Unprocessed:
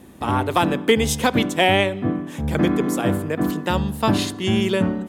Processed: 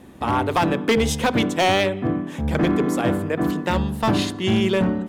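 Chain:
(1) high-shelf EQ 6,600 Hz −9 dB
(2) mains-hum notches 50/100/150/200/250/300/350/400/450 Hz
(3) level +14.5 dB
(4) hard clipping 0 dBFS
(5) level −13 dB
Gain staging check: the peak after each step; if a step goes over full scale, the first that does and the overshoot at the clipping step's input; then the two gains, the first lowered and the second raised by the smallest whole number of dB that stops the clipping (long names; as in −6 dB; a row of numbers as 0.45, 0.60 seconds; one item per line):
−6.0, −6.0, +8.5, 0.0, −13.0 dBFS
step 3, 8.5 dB
step 3 +5.5 dB, step 5 −4 dB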